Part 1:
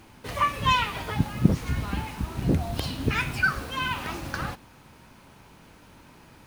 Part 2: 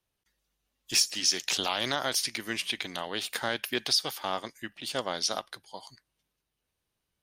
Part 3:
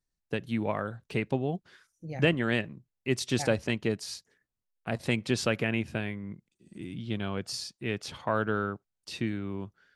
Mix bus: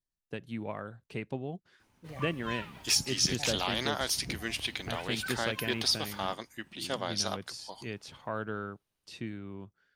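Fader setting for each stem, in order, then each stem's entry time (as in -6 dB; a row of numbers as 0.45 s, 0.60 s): -18.0 dB, -2.5 dB, -7.5 dB; 1.80 s, 1.95 s, 0.00 s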